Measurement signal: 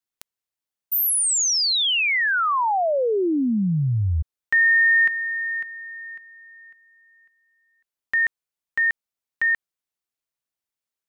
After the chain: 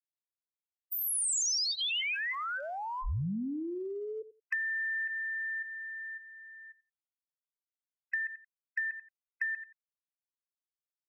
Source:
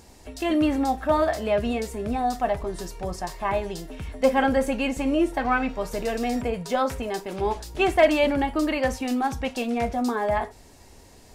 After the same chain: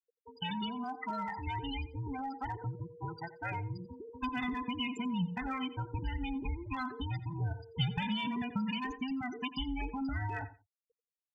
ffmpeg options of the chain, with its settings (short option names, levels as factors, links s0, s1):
-filter_complex "[0:a]afftfilt=real='real(if(between(b,1,1008),(2*floor((b-1)/24)+1)*24-b,b),0)':imag='imag(if(between(b,1,1008),(2*floor((b-1)/24)+1)*24-b,b),0)*if(between(b,1,1008),-1,1)':win_size=2048:overlap=0.75,highpass=f=98:p=1,afftfilt=real='re*gte(hypot(re,im),0.0501)':imag='im*gte(hypot(re,im),0.0501)':win_size=1024:overlap=0.75,lowpass=9500,asubboost=boost=10.5:cutoff=180,asplit=2[s0][s1];[s1]adelay=88,lowpass=f=4400:p=1,volume=0.126,asplit=2[s2][s3];[s3]adelay=88,lowpass=f=4400:p=1,volume=0.17[s4];[s0][s2][s4]amix=inputs=3:normalize=0,acrossover=split=390|3300[s5][s6][s7];[s6]acompressor=threshold=0.0708:ratio=6:attack=0.12:release=101:knee=2.83:detection=peak[s8];[s5][s8][s7]amix=inputs=3:normalize=0,tiltshelf=f=1100:g=-8.5,acompressor=threshold=0.0158:ratio=2:attack=92:release=87:knee=6:detection=peak,bandreject=f=3900:w=7.1,volume=0.501"